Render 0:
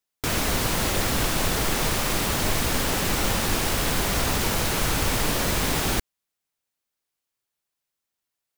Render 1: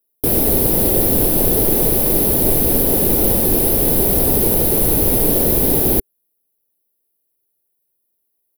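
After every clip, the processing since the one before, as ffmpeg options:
ffmpeg -i in.wav -af "firequalizer=gain_entry='entry(110,0);entry(390,8);entry(1200,-15);entry(4300,-9);entry(7400,-14);entry(11000,11)':delay=0.05:min_phase=1,volume=5.5dB" out.wav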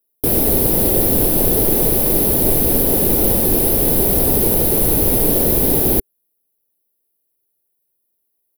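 ffmpeg -i in.wav -af anull out.wav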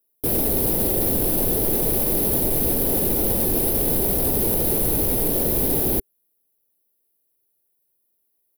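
ffmpeg -i in.wav -af "alimiter=limit=-11.5dB:level=0:latency=1:release=19" out.wav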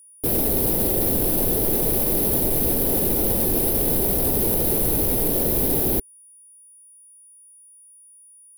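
ffmpeg -i in.wav -af "aeval=exprs='val(0)+0.00447*sin(2*PI*9700*n/s)':channel_layout=same" out.wav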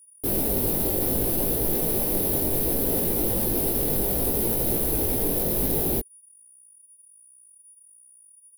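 ffmpeg -i in.wav -af "flanger=delay=17:depth=3.3:speed=0.65" out.wav

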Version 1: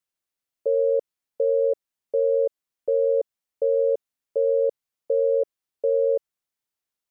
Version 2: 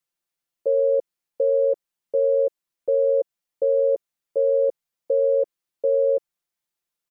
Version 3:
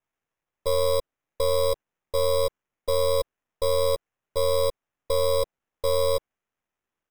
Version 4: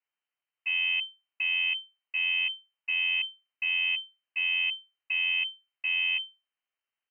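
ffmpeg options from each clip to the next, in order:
ffmpeg -i in.wav -af "aecho=1:1:5.8:0.65" out.wav
ffmpeg -i in.wav -af "aeval=exprs='if(lt(val(0),0),0.251*val(0),val(0))':channel_layout=same,acrusher=samples=10:mix=1:aa=0.000001" out.wav
ffmpeg -i in.wav -filter_complex "[0:a]acrossover=split=770[link_01][link_02];[link_02]asoftclip=type=tanh:threshold=-30.5dB[link_03];[link_01][link_03]amix=inputs=2:normalize=0,lowpass=frequency=2600:width_type=q:width=0.5098,lowpass=frequency=2600:width_type=q:width=0.6013,lowpass=frequency=2600:width_type=q:width=0.9,lowpass=frequency=2600:width_type=q:width=2.563,afreqshift=-3100,volume=-5dB" out.wav

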